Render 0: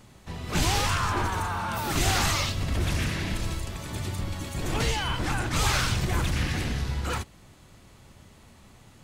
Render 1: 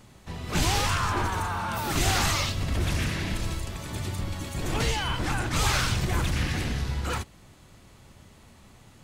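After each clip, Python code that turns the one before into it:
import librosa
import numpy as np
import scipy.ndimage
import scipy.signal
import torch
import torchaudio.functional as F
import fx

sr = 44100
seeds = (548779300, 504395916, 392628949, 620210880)

y = x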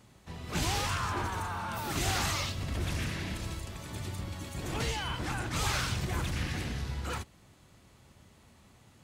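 y = scipy.signal.sosfilt(scipy.signal.butter(2, 43.0, 'highpass', fs=sr, output='sos'), x)
y = y * 10.0 ** (-6.0 / 20.0)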